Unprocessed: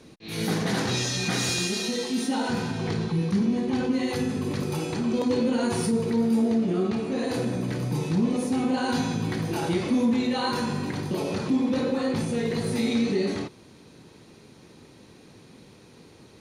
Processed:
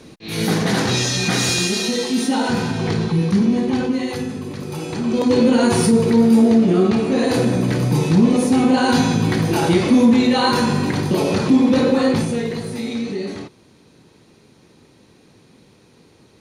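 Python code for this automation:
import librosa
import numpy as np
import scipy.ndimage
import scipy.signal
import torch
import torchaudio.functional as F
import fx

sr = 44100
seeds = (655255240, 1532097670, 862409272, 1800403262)

y = fx.gain(x, sr, db=fx.line((3.63, 7.5), (4.56, -1.5), (5.43, 10.0), (12.08, 10.0), (12.7, -0.5)))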